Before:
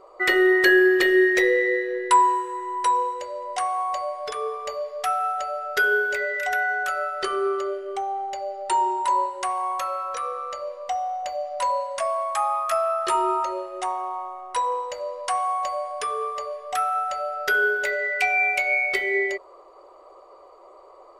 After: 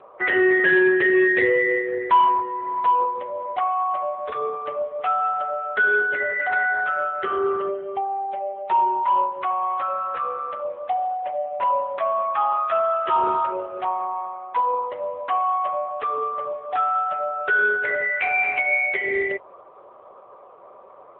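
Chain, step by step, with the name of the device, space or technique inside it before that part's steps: telephone (BPF 340–3000 Hz; soft clip -14 dBFS, distortion -19 dB; gain +4 dB; AMR-NB 7.95 kbps 8000 Hz)

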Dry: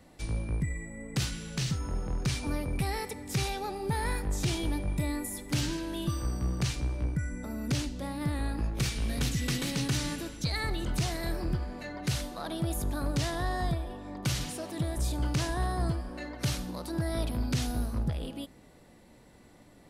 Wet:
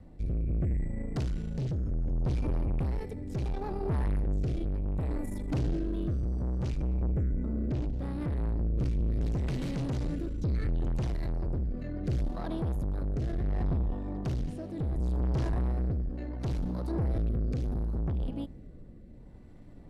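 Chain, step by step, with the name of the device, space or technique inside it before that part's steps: tilt -4 dB/oct; overdriven rotary cabinet (tube stage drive 26 dB, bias 0.5; rotary speaker horn 0.7 Hz); 7.23–7.94 LPF 3600 Hz 6 dB/oct

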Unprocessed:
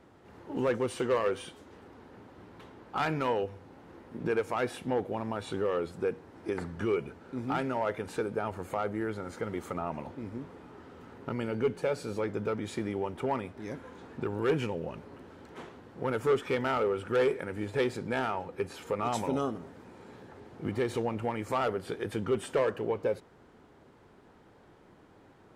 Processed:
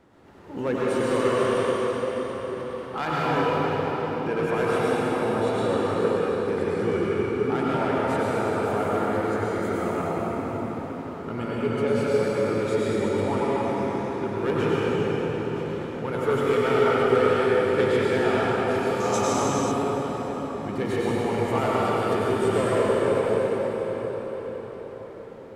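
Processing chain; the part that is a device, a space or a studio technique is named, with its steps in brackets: cathedral (reverb RT60 5.8 s, pre-delay 89 ms, DRR -8 dB); 19–19.72 bell 6300 Hz +13 dB 0.51 oct

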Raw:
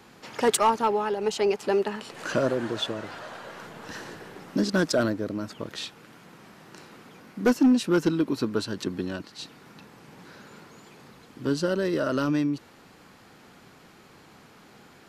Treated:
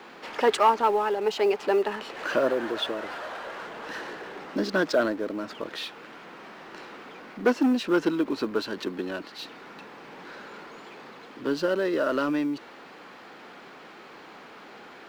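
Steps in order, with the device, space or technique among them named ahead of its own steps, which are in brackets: phone line with mismatched companding (BPF 330–3500 Hz; G.711 law mismatch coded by mu); gain +1.5 dB

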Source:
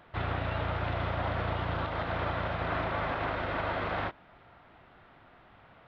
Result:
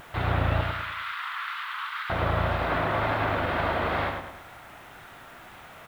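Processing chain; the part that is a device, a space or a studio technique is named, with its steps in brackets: 0.61–2.1 steep high-pass 1100 Hz 48 dB/oct; feedback echo 0.104 s, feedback 43%, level -5 dB; noise-reduction cassette on a plain deck (mismatched tape noise reduction encoder only; wow and flutter; white noise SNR 31 dB); gain +4.5 dB

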